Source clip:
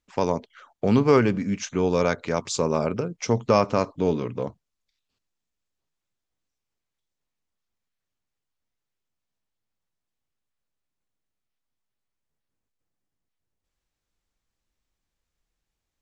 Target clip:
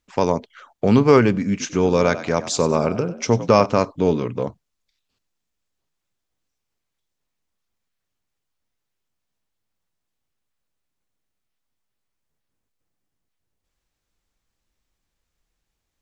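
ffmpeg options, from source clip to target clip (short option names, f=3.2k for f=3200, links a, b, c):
-filter_complex "[0:a]asettb=1/sr,asplit=3[a][b][c];[a]atrim=end=1.504[d];[b]atrim=start=1.5:end=3.66,asetpts=PTS-STARTPTS,afade=t=in:d=0.004:c=qsin,afade=t=out:st=2.156:d=0.004:c=qsin,asplit=4[e][f][g][h];[f]adelay=96,afreqshift=54,volume=-14dB[i];[g]adelay=192,afreqshift=108,volume=-23.9dB[j];[h]adelay=288,afreqshift=162,volume=-33.8dB[k];[e][i][j][k]amix=inputs=4:normalize=0,atrim=end_sample=95256[l];[c]atrim=start=3.656[m];[d][l]acrossfade=d=0.004:c1=hsin:c2=qsin[n];[n][m]acrossfade=d=0.004:c1=qsin:c2=hsin,volume=4.5dB"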